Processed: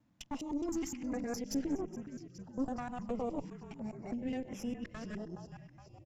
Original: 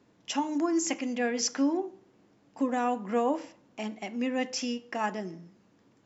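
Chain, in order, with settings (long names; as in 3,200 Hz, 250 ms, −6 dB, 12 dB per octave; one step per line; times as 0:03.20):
reversed piece by piece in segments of 103 ms
echo with shifted repeats 418 ms, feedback 58%, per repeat −41 Hz, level −13 dB
tube saturation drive 24 dB, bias 0.65
low-shelf EQ 470 Hz +9.5 dB
notch on a step sequencer 2.9 Hz 420–4,400 Hz
level −9 dB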